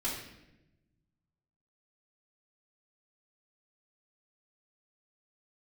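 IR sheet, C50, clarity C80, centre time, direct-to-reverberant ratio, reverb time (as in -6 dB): 3.5 dB, 6.5 dB, 45 ms, -8.5 dB, 0.95 s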